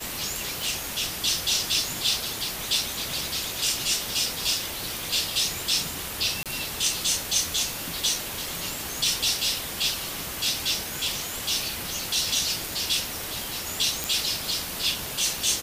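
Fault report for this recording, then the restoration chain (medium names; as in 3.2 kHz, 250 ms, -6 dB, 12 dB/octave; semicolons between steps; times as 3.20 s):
0.62 s: pop
6.43–6.46 s: dropout 27 ms
14.04 s: pop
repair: de-click; interpolate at 6.43 s, 27 ms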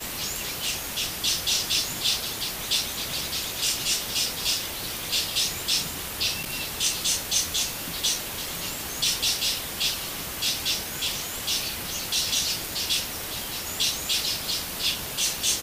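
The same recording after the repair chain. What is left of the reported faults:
nothing left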